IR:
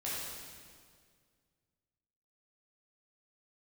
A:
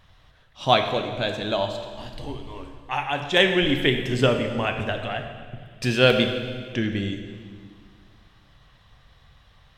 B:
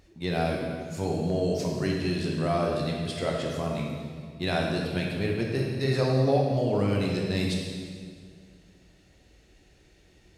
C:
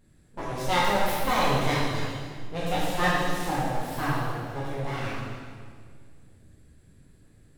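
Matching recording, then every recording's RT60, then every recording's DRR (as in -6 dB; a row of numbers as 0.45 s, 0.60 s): C; 1.9 s, 1.9 s, 1.9 s; 5.0 dB, -1.5 dB, -8.5 dB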